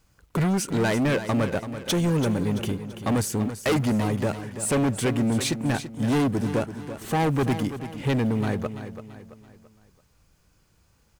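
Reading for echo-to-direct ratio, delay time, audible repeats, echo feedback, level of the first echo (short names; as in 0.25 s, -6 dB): -10.0 dB, 0.335 s, 4, 42%, -11.0 dB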